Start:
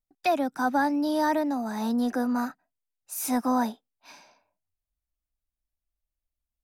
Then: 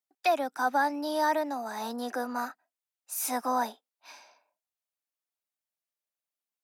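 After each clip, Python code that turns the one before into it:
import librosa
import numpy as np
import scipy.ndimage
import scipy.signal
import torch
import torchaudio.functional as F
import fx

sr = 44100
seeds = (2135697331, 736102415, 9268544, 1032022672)

y = scipy.signal.sosfilt(scipy.signal.butter(2, 470.0, 'highpass', fs=sr, output='sos'), x)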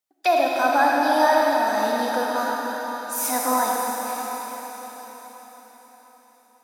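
y = fx.rev_freeverb(x, sr, rt60_s=5.0, hf_ratio=1.0, predelay_ms=10, drr_db=-3.0)
y = y * librosa.db_to_amplitude(5.0)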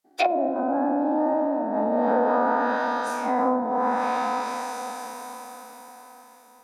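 y = fx.spec_dilate(x, sr, span_ms=120)
y = fx.env_lowpass_down(y, sr, base_hz=390.0, full_db=-13.0)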